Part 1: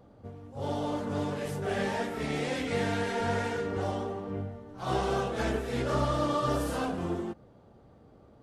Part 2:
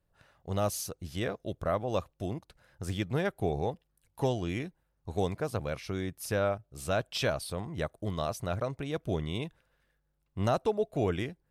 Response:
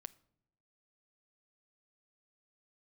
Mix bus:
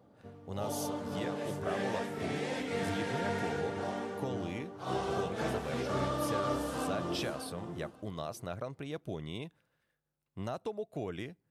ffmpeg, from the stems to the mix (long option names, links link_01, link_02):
-filter_complex "[0:a]volume=-5dB,asplit=2[link_01][link_02];[link_02]volume=-7.5dB[link_03];[1:a]acompressor=threshold=-29dB:ratio=6,volume=-5.5dB,asplit=2[link_04][link_05];[link_05]volume=-11dB[link_06];[2:a]atrim=start_sample=2205[link_07];[link_06][link_07]afir=irnorm=-1:irlink=0[link_08];[link_03]aecho=0:1:576|1152|1728:1|0.16|0.0256[link_09];[link_01][link_04][link_08][link_09]amix=inputs=4:normalize=0,highpass=110"